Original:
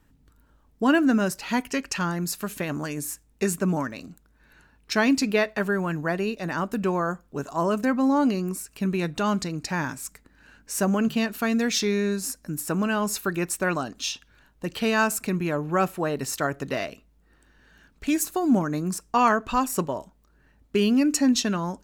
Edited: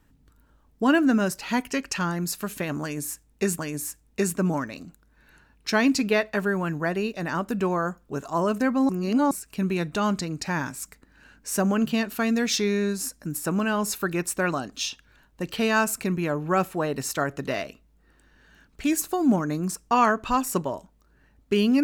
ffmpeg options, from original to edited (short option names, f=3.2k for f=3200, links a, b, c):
-filter_complex "[0:a]asplit=4[a][b][c][d];[a]atrim=end=3.592[e];[b]atrim=start=2.818:end=8.122[f];[c]atrim=start=8.118:end=8.542,asetpts=PTS-STARTPTS,areverse[g];[d]atrim=start=8.538[h];[e][f]acrossfade=d=0.004:c1=hsin:c2=hsin[i];[i][g]acrossfade=d=0.004:c1=hsin:c2=hsin[j];[j][h]acrossfade=d=0.004:c1=hsin:c2=hsin"